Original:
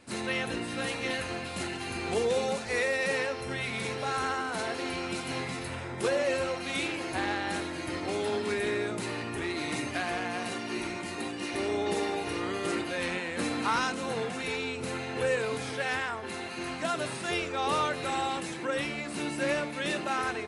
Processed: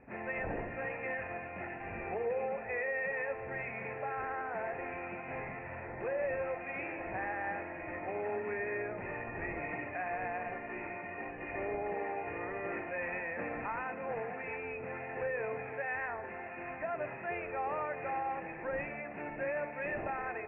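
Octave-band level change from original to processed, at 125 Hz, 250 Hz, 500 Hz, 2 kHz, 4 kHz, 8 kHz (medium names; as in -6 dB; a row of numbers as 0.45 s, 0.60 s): -8.5 dB, -11.0 dB, -5.5 dB, -5.5 dB, under -30 dB, under -40 dB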